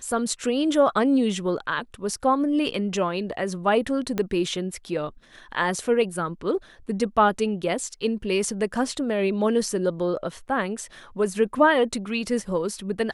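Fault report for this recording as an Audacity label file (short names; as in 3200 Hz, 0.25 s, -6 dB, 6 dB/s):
4.180000	4.180000	pop -12 dBFS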